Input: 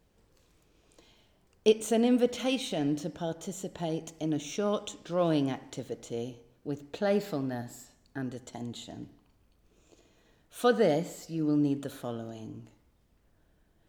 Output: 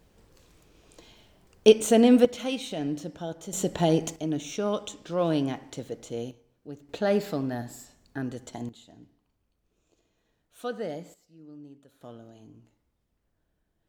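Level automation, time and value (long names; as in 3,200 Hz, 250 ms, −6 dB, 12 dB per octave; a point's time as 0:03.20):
+7 dB
from 0:02.25 −1 dB
from 0:03.53 +10.5 dB
from 0:04.16 +1.5 dB
from 0:06.31 −6 dB
from 0:06.89 +3 dB
from 0:08.69 −9 dB
from 0:11.14 −20 dB
from 0:12.01 −8.5 dB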